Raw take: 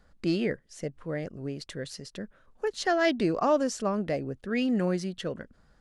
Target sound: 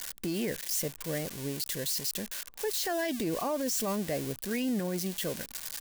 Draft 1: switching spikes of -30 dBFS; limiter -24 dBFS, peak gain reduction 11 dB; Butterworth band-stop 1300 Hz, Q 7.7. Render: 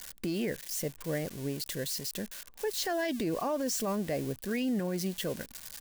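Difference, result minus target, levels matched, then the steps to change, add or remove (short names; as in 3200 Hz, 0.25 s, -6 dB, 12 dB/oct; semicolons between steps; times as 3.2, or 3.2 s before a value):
switching spikes: distortion -7 dB
change: switching spikes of -23 dBFS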